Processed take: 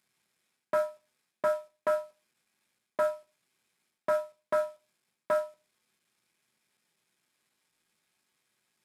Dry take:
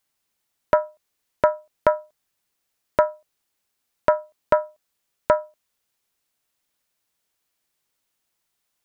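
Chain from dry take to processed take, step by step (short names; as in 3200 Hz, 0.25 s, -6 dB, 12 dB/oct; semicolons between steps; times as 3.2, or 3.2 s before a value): CVSD 64 kbps; reverse; compressor 8:1, threshold -26 dBFS, peak gain reduction 14 dB; reverse; reverb RT60 0.25 s, pre-delay 3 ms, DRR 4 dB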